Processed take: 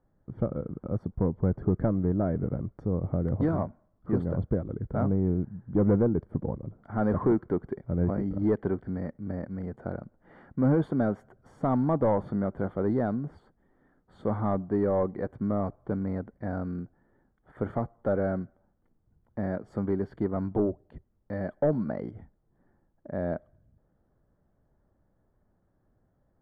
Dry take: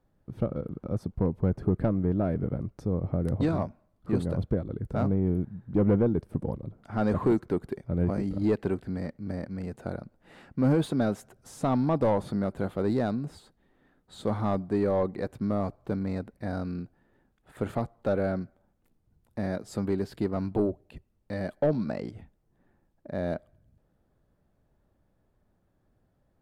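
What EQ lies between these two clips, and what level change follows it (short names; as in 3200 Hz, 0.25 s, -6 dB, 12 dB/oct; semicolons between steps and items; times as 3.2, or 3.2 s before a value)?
polynomial smoothing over 41 samples; 0.0 dB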